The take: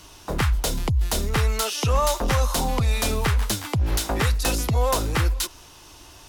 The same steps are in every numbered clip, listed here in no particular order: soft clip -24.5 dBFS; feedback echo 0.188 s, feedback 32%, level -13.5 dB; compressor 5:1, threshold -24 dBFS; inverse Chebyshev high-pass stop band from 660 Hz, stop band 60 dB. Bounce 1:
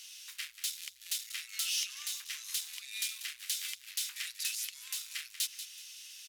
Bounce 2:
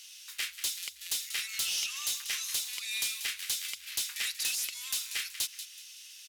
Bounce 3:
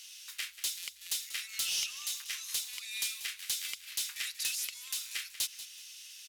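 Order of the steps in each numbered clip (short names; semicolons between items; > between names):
compressor > feedback echo > soft clip > inverse Chebyshev high-pass; inverse Chebyshev high-pass > compressor > feedback echo > soft clip; compressor > inverse Chebyshev high-pass > soft clip > feedback echo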